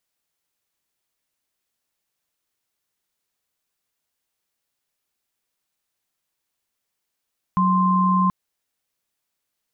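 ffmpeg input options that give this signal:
ffmpeg -f lavfi -i "aevalsrc='0.126*(sin(2*PI*185*t)+sin(2*PI*1046.5*t))':duration=0.73:sample_rate=44100" out.wav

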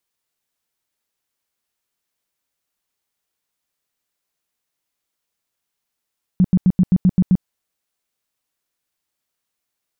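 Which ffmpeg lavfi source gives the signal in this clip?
ffmpeg -f lavfi -i "aevalsrc='0.355*sin(2*PI*183*mod(t,0.13))*lt(mod(t,0.13),8/183)':duration=1.04:sample_rate=44100" out.wav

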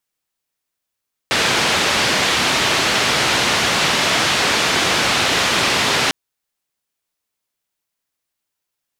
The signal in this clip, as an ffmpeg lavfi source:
ffmpeg -f lavfi -i "anoisesrc=color=white:duration=4.8:sample_rate=44100:seed=1,highpass=frequency=88,lowpass=frequency=3900,volume=-4.9dB" out.wav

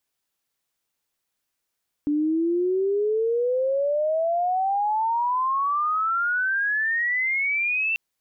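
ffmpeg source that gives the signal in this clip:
ffmpeg -f lavfi -i "aevalsrc='pow(10,(-19.5-1.5*t/5.89)/20)*sin(2*PI*290*5.89/log(2700/290)*(exp(log(2700/290)*t/5.89)-1))':duration=5.89:sample_rate=44100" out.wav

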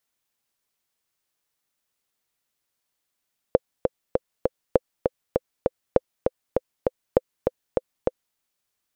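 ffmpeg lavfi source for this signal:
ffmpeg -f lavfi -i "aevalsrc='pow(10,(-2-4.5*gte(mod(t,4*60/199),60/199))/20)*sin(2*PI*513*mod(t,60/199))*exp(-6.91*mod(t,60/199)/0.03)':duration=4.82:sample_rate=44100" out.wav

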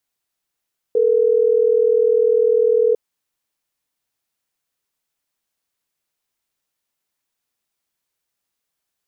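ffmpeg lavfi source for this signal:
ffmpeg -f lavfi -i "aevalsrc='0.178*(sin(2*PI*440*t)+sin(2*PI*480*t))*clip(min(mod(t,6),2-mod(t,6))/0.005,0,1)':duration=3.12:sample_rate=44100" out.wav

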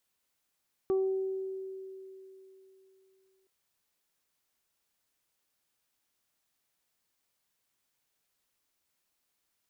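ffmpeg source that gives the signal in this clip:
ffmpeg -f lavfi -i "aevalsrc='0.0631*pow(10,-3*t/3.31)*sin(2*PI*382*t)+0.00794*pow(10,-3*t/1.09)*sin(2*PI*764*t)+0.0075*pow(10,-3*t/0.31)*sin(2*PI*1146*t)':duration=2.57:sample_rate=44100" out.wav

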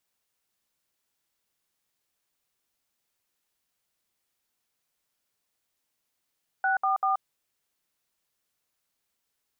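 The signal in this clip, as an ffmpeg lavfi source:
ffmpeg -f lavfi -i "aevalsrc='0.0596*clip(min(mod(t,0.194),0.129-mod(t,0.194))/0.002,0,1)*(eq(floor(t/0.194),0)*(sin(2*PI*770*mod(t,0.194))+sin(2*PI*1477*mod(t,0.194)))+eq(floor(t/0.194),1)*(sin(2*PI*770*mod(t,0.194))+sin(2*PI*1209*mod(t,0.194)))+eq(floor(t/0.194),2)*(sin(2*PI*770*mod(t,0.194))+sin(2*PI*1209*mod(t,0.194))))':duration=0.582:sample_rate=44100" out.wav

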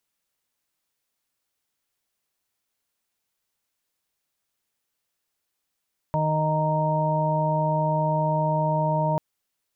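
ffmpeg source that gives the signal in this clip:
ffmpeg -f lavfi -i "aevalsrc='0.0631*sin(2*PI*155*t)+0.015*sin(2*PI*310*t)+0.00944*sin(2*PI*465*t)+0.0531*sin(2*PI*620*t)+0.00708*sin(2*PI*775*t)+0.0562*sin(2*PI*930*t)':duration=3.04:sample_rate=44100" out.wav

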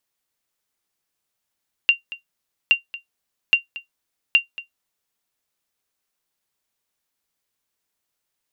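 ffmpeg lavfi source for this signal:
ffmpeg -f lavfi -i "aevalsrc='0.531*(sin(2*PI*2770*mod(t,0.82))*exp(-6.91*mod(t,0.82)/0.13)+0.126*sin(2*PI*2770*max(mod(t,0.82)-0.23,0))*exp(-6.91*max(mod(t,0.82)-0.23,0)/0.13))':duration=3.28:sample_rate=44100" out.wav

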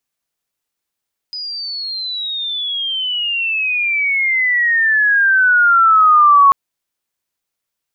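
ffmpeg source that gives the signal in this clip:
ffmpeg -f lavfi -i "aevalsrc='pow(10,(-23+18*t/5.19)/20)*sin(2*PI*5000*5.19/log(1100/5000)*(exp(log(1100/5000)*t/5.19)-1))':duration=5.19:sample_rate=44100" out.wav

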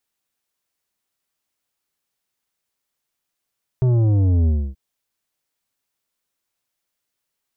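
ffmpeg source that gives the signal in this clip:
ffmpeg -f lavfi -i "aevalsrc='0.188*clip((0.93-t)/0.28,0,1)*tanh(2.99*sin(2*PI*130*0.93/log(65/130)*(exp(log(65/130)*t/0.93)-1)))/tanh(2.99)':duration=0.93:sample_rate=44100" out.wav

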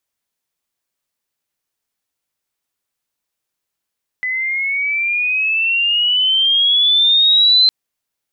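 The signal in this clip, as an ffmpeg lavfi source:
ffmpeg -f lavfi -i "aevalsrc='pow(10,(-17.5+10*t/3.46)/20)*sin(2*PI*2000*3.46/log(4100/2000)*(exp(log(4100/2000)*t/3.46)-1))':duration=3.46:sample_rate=44100" out.wav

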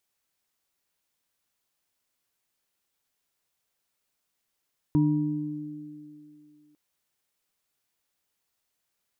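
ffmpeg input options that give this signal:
ffmpeg -f lavfi -i "aevalsrc='0.0891*pow(10,-3*t/2.08)*sin(2*PI*152*t)+0.106*pow(10,-3*t/2.74)*sin(2*PI*299*t)+0.0119*pow(10,-3*t/0.88)*sin(2*PI*954*t)':duration=1.8:sample_rate=44100" out.wav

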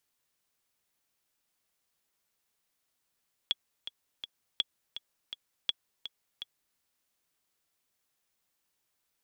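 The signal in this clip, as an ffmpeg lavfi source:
ffmpeg -f lavfi -i "aevalsrc='pow(10,(-14-11.5*gte(mod(t,3*60/165),60/165))/20)*sin(2*PI*3360*mod(t,60/165))*exp(-6.91*mod(t,60/165)/0.03)':duration=3.27:sample_rate=44100" out.wav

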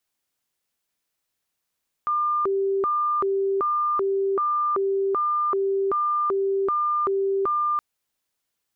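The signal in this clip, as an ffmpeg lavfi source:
ffmpeg -f lavfi -i "aevalsrc='0.1*sin(2*PI*(795.5*t+404.5/1.3*(0.5-abs(mod(1.3*t,1)-0.5))))':duration=5.72:sample_rate=44100" out.wav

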